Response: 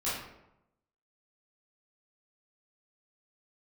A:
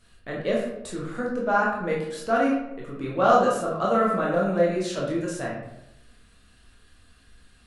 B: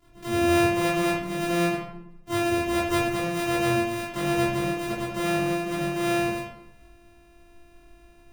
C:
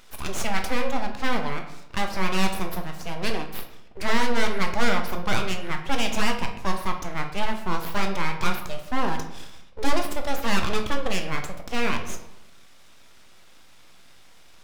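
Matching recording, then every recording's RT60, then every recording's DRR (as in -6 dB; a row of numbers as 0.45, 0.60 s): B; 0.85, 0.85, 0.85 s; -4.5, -11.5, 4.0 dB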